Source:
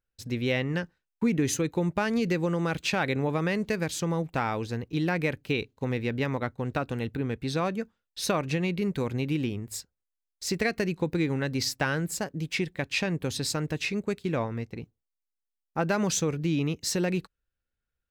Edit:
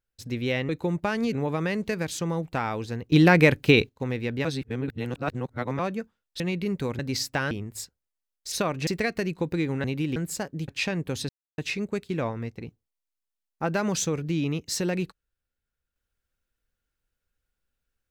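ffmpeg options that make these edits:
-filter_complex "[0:a]asplit=17[s0][s1][s2][s3][s4][s5][s6][s7][s8][s9][s10][s11][s12][s13][s14][s15][s16];[s0]atrim=end=0.692[s17];[s1]atrim=start=1.618:end=2.262[s18];[s2]atrim=start=3.138:end=4.932[s19];[s3]atrim=start=4.928:end=5.702,asetpts=PTS-STARTPTS,volume=3.35[s20];[s4]atrim=start=5.698:end=6.262[s21];[s5]atrim=start=6.258:end=7.602,asetpts=PTS-STARTPTS,areverse[s22];[s6]atrim=start=7.598:end=8.212[s23];[s7]atrim=start=8.558:end=9.152[s24];[s8]atrim=start=11.448:end=11.972[s25];[s9]atrim=start=9.468:end=10.482[s26];[s10]atrim=start=8.208:end=8.562[s27];[s11]atrim=start=10.478:end=11.452[s28];[s12]atrim=start=9.148:end=9.472[s29];[s13]atrim=start=11.968:end=12.492[s30];[s14]atrim=start=12.828:end=13.44,asetpts=PTS-STARTPTS,afade=t=out:st=0.608:d=0.004:c=hsin[s31];[s15]atrim=start=13.44:end=13.73,asetpts=PTS-STARTPTS,volume=0[s32];[s16]atrim=start=13.73,asetpts=PTS-STARTPTS,afade=t=in:d=0.004:c=hsin[s33];[s17][s18]acrossfade=d=0.004:c1=hsin:c2=hsin[s34];[s34][s19]acrossfade=d=0.004:c1=hsin:c2=hsin[s35];[s35][s20]acrossfade=d=0.004:c1=hsin:c2=hsin[s36];[s36][s21]acrossfade=d=0.004:c1=hsin:c2=hsin[s37];[s37][s22]acrossfade=d=0.004:c1=hsin:c2=hsin[s38];[s38][s23]acrossfade=d=0.004:c1=hsin:c2=hsin[s39];[s39][s24]acrossfade=d=0.004:c1=hsin:c2=hsin[s40];[s40][s25]acrossfade=d=0.004:c1=hsin:c2=hsin[s41];[s41][s26]acrossfade=d=0.004:c1=hsin:c2=hsin[s42];[s42][s27]acrossfade=d=0.004:c1=hsin:c2=hsin[s43];[s43][s28]acrossfade=d=0.004:c1=hsin:c2=hsin[s44];[s44][s29]acrossfade=d=0.004:c1=hsin:c2=hsin[s45];[s45][s30]acrossfade=d=0.004:c1=hsin:c2=hsin[s46];[s31][s32][s33]concat=n=3:v=0:a=1[s47];[s46][s47]acrossfade=d=0.004:c1=hsin:c2=hsin"

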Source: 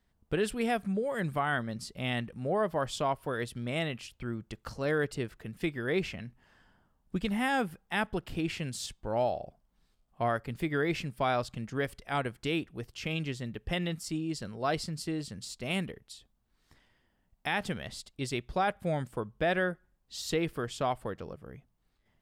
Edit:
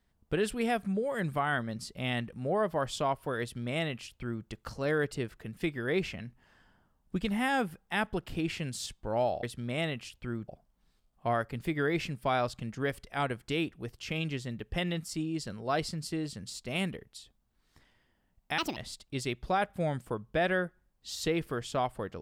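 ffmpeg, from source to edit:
-filter_complex "[0:a]asplit=5[s0][s1][s2][s3][s4];[s0]atrim=end=9.432[s5];[s1]atrim=start=3.408:end=4.462[s6];[s2]atrim=start=9.428:end=17.534[s7];[s3]atrim=start=17.53:end=17.83,asetpts=PTS-STARTPTS,asetrate=70560,aresample=44100[s8];[s4]atrim=start=17.826[s9];[s5][s6]acrossfade=d=0.004:c1=hsin:c2=hsin[s10];[s10][s7]acrossfade=d=0.004:c1=hsin:c2=hsin[s11];[s11][s8]acrossfade=d=0.004:c1=hsin:c2=hsin[s12];[s12][s9]acrossfade=d=0.004:c1=hsin:c2=hsin"

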